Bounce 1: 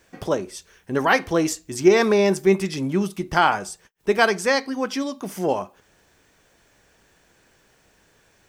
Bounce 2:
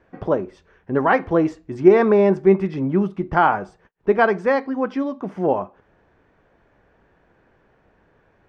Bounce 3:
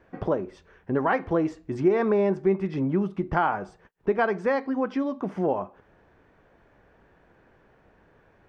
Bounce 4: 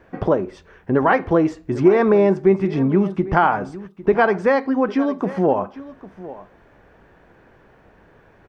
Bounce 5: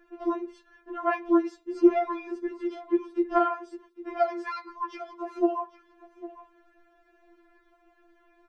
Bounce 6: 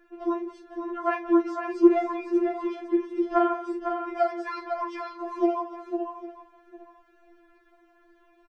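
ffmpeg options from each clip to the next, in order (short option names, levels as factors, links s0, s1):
-af "lowpass=1400,volume=1.41"
-af "acompressor=threshold=0.0562:ratio=2"
-af "aecho=1:1:802:0.141,volume=2.37"
-af "afftfilt=real='re*4*eq(mod(b,16),0)':imag='im*4*eq(mod(b,16),0)':win_size=2048:overlap=0.75,volume=0.447"
-af "aecho=1:1:41|179|503|573:0.335|0.168|0.447|0.251"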